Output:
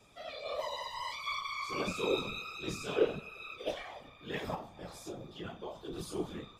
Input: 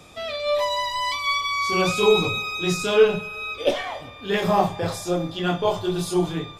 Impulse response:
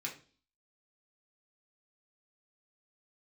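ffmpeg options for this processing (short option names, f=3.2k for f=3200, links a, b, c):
-filter_complex "[0:a]asettb=1/sr,asplit=3[a][b][c];[a]atrim=end=4.544[d];[b]atrim=start=4.54:end=5.93,asetpts=PTS-STARTPTS,afade=t=in:d=0.004:c=qsin,afade=t=out:st=1.386:d=0.004:c=qsin,acompressor=threshold=-26dB:ratio=6[e];[c]atrim=start=5.926[f];[d][e]acrossfade=d=0.004:c1=hsin:c2=qsin[g];[g][f]acrossfade=d=0.004:c1=qsin:c2=hsin,flanger=delay=8.4:depth=8.3:regen=42:speed=1.5:shape=triangular,afftfilt=real='hypot(re,im)*cos(2*PI*random(0))':imag='hypot(re,im)*sin(2*PI*random(1))':win_size=512:overlap=0.75,volume=-5dB"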